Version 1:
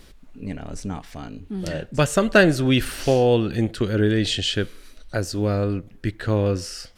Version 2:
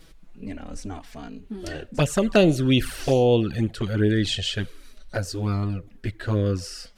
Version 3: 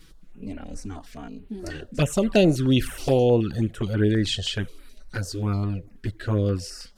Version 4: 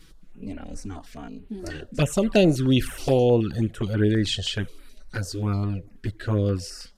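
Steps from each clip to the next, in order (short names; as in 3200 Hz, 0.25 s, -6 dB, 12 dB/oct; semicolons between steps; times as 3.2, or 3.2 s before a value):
envelope flanger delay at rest 6.7 ms, full sweep at -13.5 dBFS
stepped notch 9.4 Hz 630–6200 Hz
downsampling 32000 Hz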